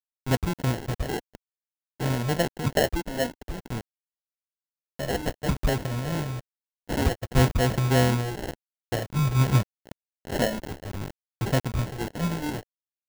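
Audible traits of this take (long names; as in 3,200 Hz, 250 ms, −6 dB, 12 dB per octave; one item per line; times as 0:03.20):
a quantiser's noise floor 6 bits, dither none
phaser sweep stages 6, 0.55 Hz, lowest notch 100–1,600 Hz
aliases and images of a low sample rate 1,200 Hz, jitter 0%
amplitude modulation by smooth noise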